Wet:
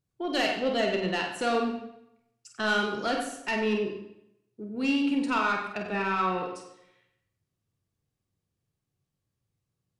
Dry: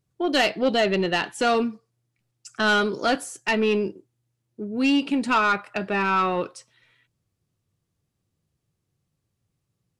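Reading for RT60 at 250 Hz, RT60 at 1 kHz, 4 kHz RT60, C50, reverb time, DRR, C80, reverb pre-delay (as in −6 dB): 0.85 s, 0.80 s, 0.70 s, 4.5 dB, 0.85 s, 1.5 dB, 7.0 dB, 32 ms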